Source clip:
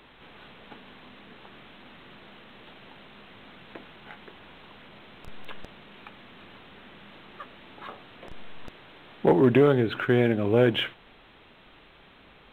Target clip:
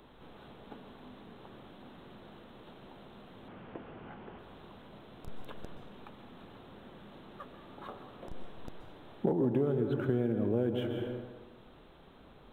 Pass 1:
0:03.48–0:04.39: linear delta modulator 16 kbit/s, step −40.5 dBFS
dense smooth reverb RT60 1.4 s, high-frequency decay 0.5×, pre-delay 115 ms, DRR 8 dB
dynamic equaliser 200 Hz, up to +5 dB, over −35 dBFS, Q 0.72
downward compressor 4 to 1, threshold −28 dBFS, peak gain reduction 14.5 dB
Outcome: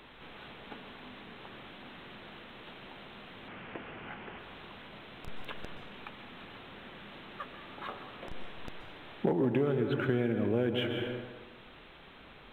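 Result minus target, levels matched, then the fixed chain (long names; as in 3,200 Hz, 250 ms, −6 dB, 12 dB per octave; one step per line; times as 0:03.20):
2,000 Hz band +12.0 dB
0:03.48–0:04.39: linear delta modulator 16 kbit/s, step −40.5 dBFS
dense smooth reverb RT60 1.4 s, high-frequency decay 0.5×, pre-delay 115 ms, DRR 8 dB
dynamic equaliser 200 Hz, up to +5 dB, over −35 dBFS, Q 0.72
downward compressor 4 to 1, threshold −28 dBFS, peak gain reduction 14.5 dB
parametric band 2,300 Hz −13.5 dB 1.6 octaves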